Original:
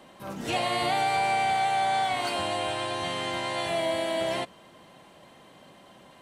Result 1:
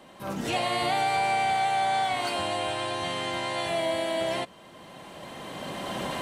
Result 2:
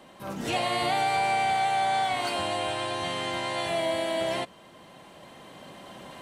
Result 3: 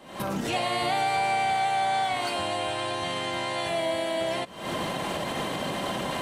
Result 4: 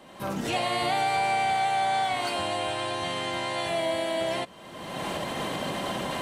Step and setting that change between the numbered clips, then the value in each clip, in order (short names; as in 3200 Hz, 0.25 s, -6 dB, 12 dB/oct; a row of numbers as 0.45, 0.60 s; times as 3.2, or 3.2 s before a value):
recorder AGC, rising by: 13, 5.1, 84, 34 dB/s